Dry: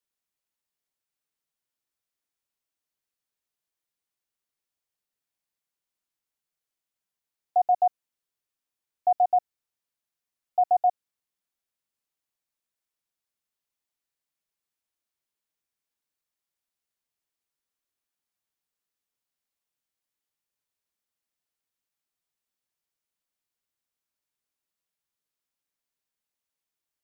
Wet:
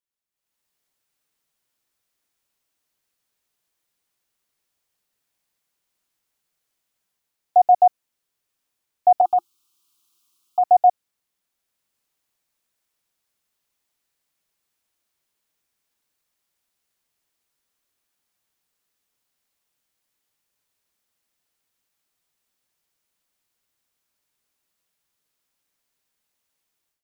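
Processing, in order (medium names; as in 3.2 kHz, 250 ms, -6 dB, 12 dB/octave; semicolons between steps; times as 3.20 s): 9.21–10.64 s: FFT filter 230 Hz 0 dB, 350 Hz +11 dB, 500 Hz -23 dB, 820 Hz +1 dB, 1.2 kHz +12 dB, 1.8 kHz -11 dB, 3 kHz +11 dB; level rider gain up to 16 dB; trim -5.5 dB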